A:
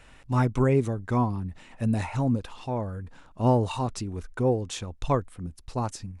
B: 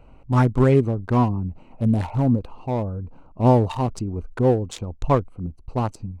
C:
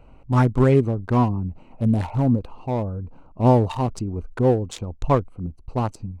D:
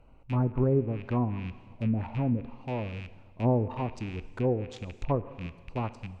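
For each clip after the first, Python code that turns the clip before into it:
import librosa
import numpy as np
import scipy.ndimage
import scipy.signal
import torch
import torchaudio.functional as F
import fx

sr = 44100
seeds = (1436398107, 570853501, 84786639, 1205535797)

y1 = fx.wiener(x, sr, points=25)
y1 = F.gain(torch.from_numpy(y1), 6.0).numpy()
y2 = y1
y3 = fx.rattle_buzz(y2, sr, strikes_db=-30.0, level_db=-24.0)
y3 = fx.rev_plate(y3, sr, seeds[0], rt60_s=1.5, hf_ratio=0.95, predelay_ms=0, drr_db=14.0)
y3 = fx.env_lowpass_down(y3, sr, base_hz=720.0, full_db=-13.5)
y3 = F.gain(torch.from_numpy(y3), -8.5).numpy()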